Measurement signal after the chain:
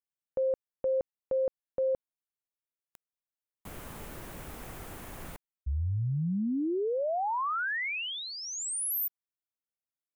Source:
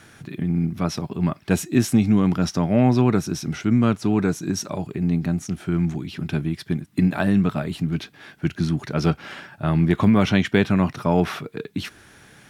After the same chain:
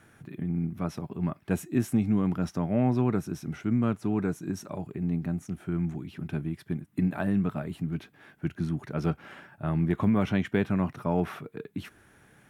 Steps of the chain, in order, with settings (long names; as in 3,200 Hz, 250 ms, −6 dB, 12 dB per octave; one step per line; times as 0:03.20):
parametric band 4,700 Hz −10.5 dB 1.5 octaves
level −7.5 dB